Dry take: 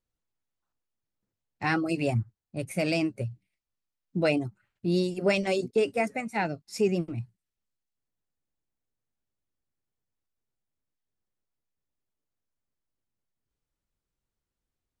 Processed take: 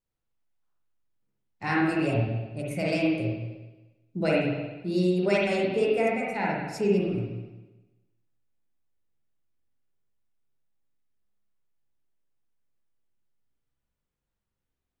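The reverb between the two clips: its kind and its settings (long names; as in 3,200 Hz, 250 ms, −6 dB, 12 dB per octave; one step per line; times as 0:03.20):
spring reverb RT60 1.1 s, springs 44/59 ms, chirp 45 ms, DRR −4.5 dB
level −4 dB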